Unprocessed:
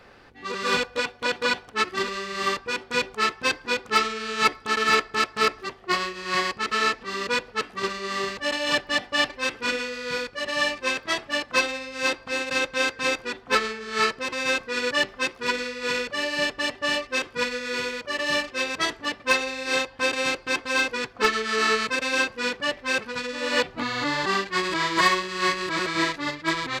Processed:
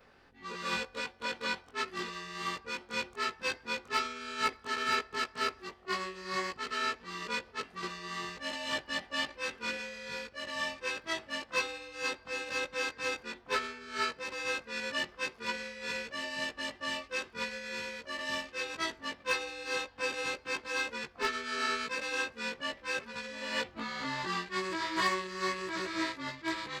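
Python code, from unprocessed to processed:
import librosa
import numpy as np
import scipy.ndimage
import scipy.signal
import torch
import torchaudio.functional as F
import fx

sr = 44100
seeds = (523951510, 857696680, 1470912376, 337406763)

y = fx.frame_reverse(x, sr, frame_ms=43.0)
y = F.gain(torch.from_numpy(y), -7.0).numpy()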